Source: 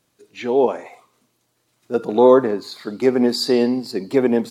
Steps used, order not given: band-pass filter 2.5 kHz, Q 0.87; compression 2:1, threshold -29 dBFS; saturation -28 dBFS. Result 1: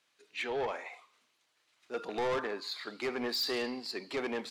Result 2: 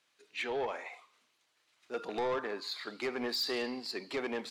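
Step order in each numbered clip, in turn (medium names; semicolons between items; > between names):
band-pass filter > saturation > compression; band-pass filter > compression > saturation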